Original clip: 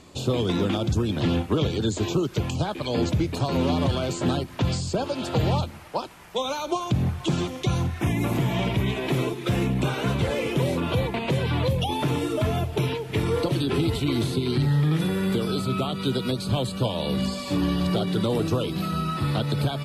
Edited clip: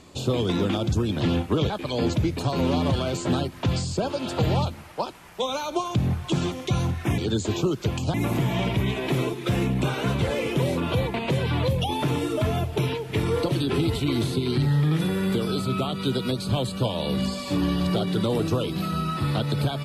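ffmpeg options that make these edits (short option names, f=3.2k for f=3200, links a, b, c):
-filter_complex "[0:a]asplit=4[a][b][c][d];[a]atrim=end=1.702[e];[b]atrim=start=2.658:end=8.142[f];[c]atrim=start=1.698:end=2.662[g];[d]atrim=start=8.138[h];[e][f]acrossfade=d=0.004:c1=hsin:c2=hsin[i];[i][g]acrossfade=d=0.004:c1=hsin:c2=hsin[j];[j][h]acrossfade=d=0.004:c1=hsin:c2=hsin"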